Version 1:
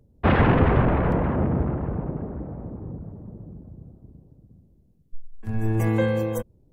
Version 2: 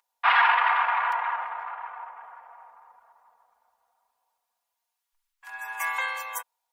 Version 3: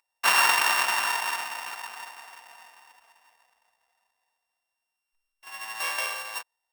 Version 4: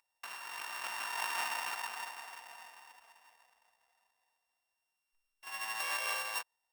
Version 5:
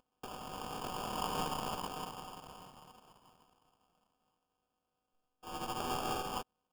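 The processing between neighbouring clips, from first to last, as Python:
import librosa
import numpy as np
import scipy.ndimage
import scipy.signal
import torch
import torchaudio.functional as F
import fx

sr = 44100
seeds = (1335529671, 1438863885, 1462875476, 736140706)

y1 = scipy.signal.sosfilt(scipy.signal.ellip(4, 1.0, 60, 890.0, 'highpass', fs=sr, output='sos'), x)
y1 = y1 + 0.62 * np.pad(y1, (int(4.2 * sr / 1000.0), 0))[:len(y1)]
y1 = y1 * librosa.db_to_amplitude(6.0)
y2 = np.r_[np.sort(y1[:len(y1) // 16 * 16].reshape(-1, 16), axis=1).ravel(), y1[len(y1) // 16 * 16:]]
y2 = y2 * librosa.db_to_amplitude(-1.0)
y3 = fx.over_compress(y2, sr, threshold_db=-32.0, ratio=-1.0)
y3 = y3 * librosa.db_to_amplitude(-7.0)
y4 = fx.tracing_dist(y3, sr, depth_ms=0.48)
y4 = fx.sample_hold(y4, sr, seeds[0], rate_hz=2000.0, jitter_pct=0)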